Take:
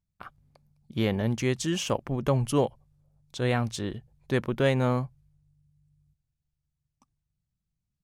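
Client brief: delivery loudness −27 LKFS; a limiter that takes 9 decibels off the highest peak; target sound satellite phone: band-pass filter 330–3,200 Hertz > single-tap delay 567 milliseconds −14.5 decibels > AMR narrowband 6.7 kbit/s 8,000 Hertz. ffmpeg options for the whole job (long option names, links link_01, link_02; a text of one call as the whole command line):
ffmpeg -i in.wav -af "alimiter=limit=-19.5dB:level=0:latency=1,highpass=330,lowpass=3200,aecho=1:1:567:0.188,volume=10.5dB" -ar 8000 -c:a libopencore_amrnb -b:a 6700 out.amr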